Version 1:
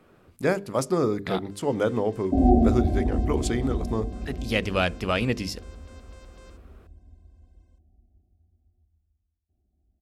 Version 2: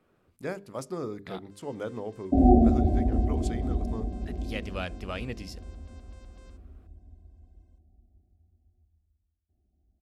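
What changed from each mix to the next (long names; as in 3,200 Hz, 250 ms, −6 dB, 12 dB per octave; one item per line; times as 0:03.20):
speech −11.0 dB
first sound −6.0 dB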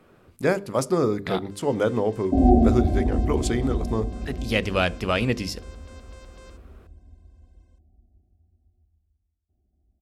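speech +10.0 dB
first sound +9.0 dB
reverb: on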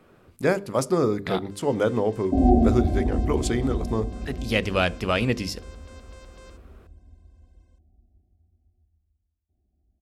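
second sound: send −11.5 dB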